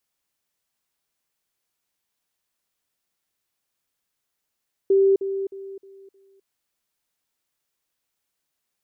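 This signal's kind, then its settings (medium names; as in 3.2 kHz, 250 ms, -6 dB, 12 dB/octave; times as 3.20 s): level ladder 390 Hz -13.5 dBFS, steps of -10 dB, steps 5, 0.26 s 0.05 s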